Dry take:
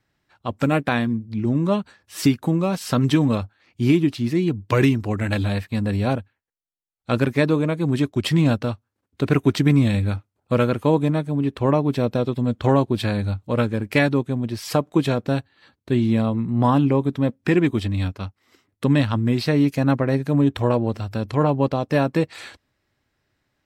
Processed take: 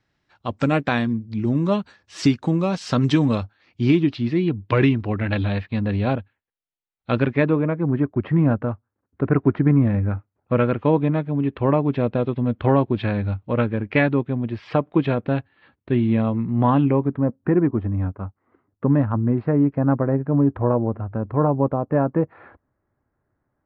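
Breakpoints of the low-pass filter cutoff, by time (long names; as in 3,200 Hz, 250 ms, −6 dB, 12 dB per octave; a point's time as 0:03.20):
low-pass filter 24 dB per octave
0:03.30 6,600 Hz
0:04.51 3,700 Hz
0:07.14 3,700 Hz
0:07.88 1,700 Hz
0:10.04 1,700 Hz
0:10.77 2,900 Hz
0:16.82 2,900 Hz
0:17.27 1,400 Hz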